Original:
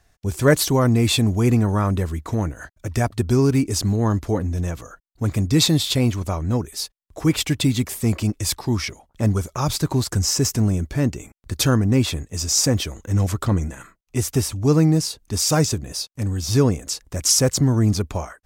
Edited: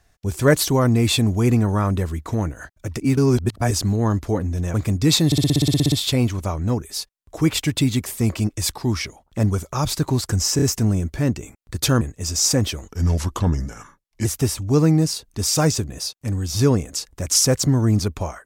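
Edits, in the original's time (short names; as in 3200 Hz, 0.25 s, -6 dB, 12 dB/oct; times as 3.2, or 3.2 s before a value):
2.97–3.71 reverse
4.74–5.23 cut
5.75 stutter 0.06 s, 12 plays
10.39 stutter 0.03 s, 3 plays
11.78–12.14 cut
13.02–14.19 speed 86%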